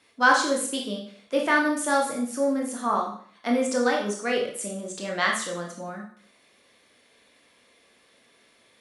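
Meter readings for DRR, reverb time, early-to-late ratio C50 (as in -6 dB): -1.0 dB, 0.55 s, 5.5 dB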